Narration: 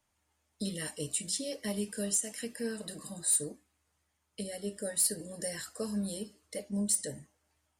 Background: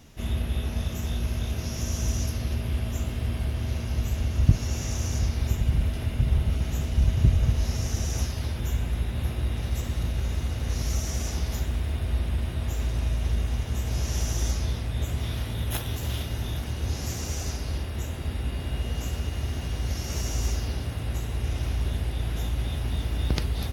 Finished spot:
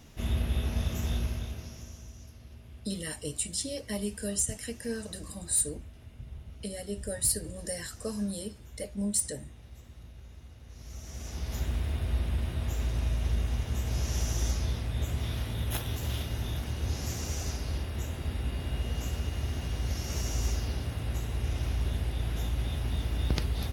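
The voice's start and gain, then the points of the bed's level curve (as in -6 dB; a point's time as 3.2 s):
2.25 s, +1.0 dB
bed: 1.16 s -1.5 dB
2.11 s -21 dB
10.7 s -21 dB
11.65 s -3 dB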